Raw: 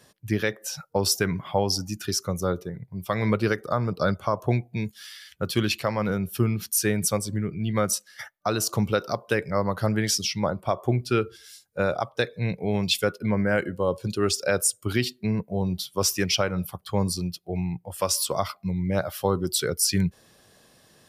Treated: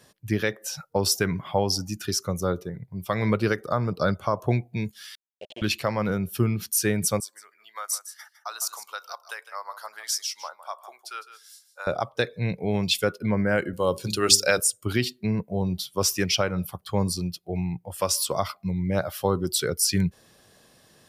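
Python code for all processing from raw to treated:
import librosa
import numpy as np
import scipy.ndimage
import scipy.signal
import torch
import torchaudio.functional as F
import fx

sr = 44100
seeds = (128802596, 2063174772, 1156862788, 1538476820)

y = fx.chain(x, sr, fx.delta_hold(step_db=-22.5),
    fx.double_bandpass(hz=1300.0, octaves=2.2), at=(5.15, 5.62))
y = fx.chain(y, sr, fx.highpass(hz=950.0, slope=24),
    fx.peak_eq(hz=2400.0, db=-11.0, octaves=1.5),
    fx.echo_single(ms=157, db=-13.0), at=(7.2, 11.87))
y = fx.chain(y, sr, fx.highpass(hz=51.0, slope=12),
    fx.high_shelf(hz=2000.0, db=11.5),
    fx.hum_notches(base_hz=50, count=8), at=(13.73, 14.6))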